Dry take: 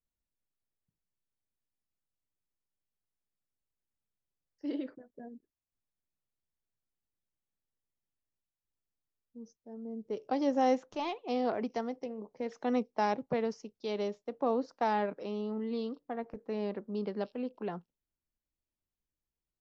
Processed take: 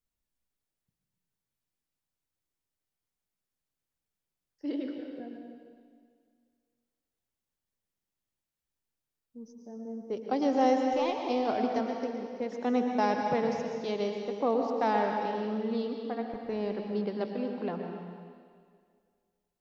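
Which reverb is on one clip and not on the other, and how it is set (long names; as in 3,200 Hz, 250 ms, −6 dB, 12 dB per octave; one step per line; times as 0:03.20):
dense smooth reverb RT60 2 s, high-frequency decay 1×, pre-delay 100 ms, DRR 2.5 dB
level +2 dB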